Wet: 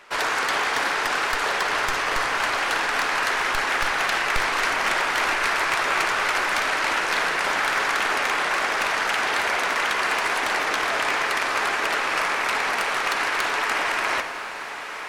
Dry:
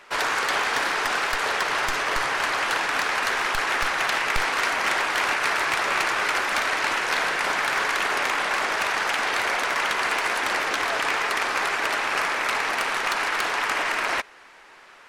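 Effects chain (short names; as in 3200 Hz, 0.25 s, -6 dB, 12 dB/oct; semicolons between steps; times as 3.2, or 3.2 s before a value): diffused feedback echo 1.078 s, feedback 66%, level -12 dB; reverb RT60 2.3 s, pre-delay 43 ms, DRR 8.5 dB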